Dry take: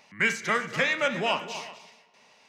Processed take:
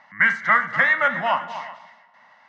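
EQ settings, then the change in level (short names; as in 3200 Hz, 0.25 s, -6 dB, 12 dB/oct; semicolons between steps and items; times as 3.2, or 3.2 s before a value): synth low-pass 2100 Hz, resonance Q 5.7; low shelf 220 Hz -9.5 dB; fixed phaser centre 1000 Hz, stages 4; +7.5 dB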